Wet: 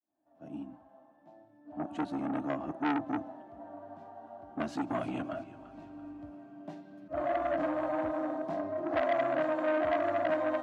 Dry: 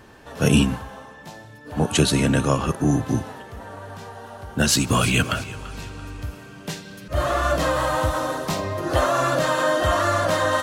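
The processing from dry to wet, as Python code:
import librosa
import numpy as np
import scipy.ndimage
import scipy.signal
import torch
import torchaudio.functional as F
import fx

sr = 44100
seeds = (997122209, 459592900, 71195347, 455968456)

y = fx.fade_in_head(x, sr, length_s=3.06)
y = fx.double_bandpass(y, sr, hz=450.0, octaves=1.1)
y = fx.transformer_sat(y, sr, knee_hz=1300.0)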